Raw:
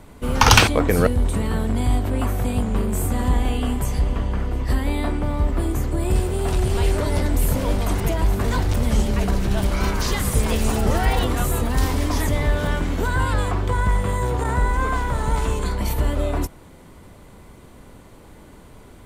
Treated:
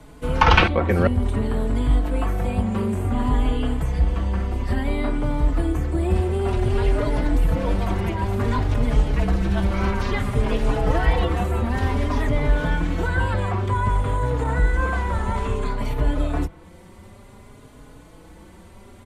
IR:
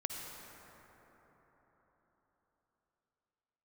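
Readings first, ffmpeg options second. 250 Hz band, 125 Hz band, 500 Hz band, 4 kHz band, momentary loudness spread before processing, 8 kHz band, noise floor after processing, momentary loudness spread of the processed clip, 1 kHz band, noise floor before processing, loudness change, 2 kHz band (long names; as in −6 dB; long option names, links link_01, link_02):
−0.5 dB, −0.5 dB, −0.5 dB, −6.0 dB, 5 LU, −15.0 dB, −46 dBFS, 5 LU, −0.5 dB, −45 dBFS, −1.0 dB, −1.0 dB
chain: -filter_complex "[0:a]lowpass=12000,acrossover=split=150|1500|3300[link_01][link_02][link_03][link_04];[link_04]acompressor=threshold=-49dB:ratio=10[link_05];[link_01][link_02][link_03][link_05]amix=inputs=4:normalize=0,asplit=2[link_06][link_07];[link_07]adelay=4.3,afreqshift=0.56[link_08];[link_06][link_08]amix=inputs=2:normalize=1,volume=2.5dB"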